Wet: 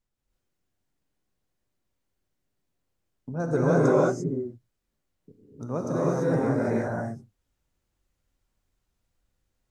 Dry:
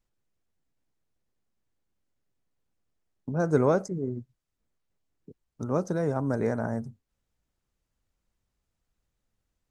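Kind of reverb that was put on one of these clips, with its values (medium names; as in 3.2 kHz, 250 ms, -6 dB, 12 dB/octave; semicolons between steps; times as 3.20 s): gated-style reverb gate 370 ms rising, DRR -6.5 dB; trim -4 dB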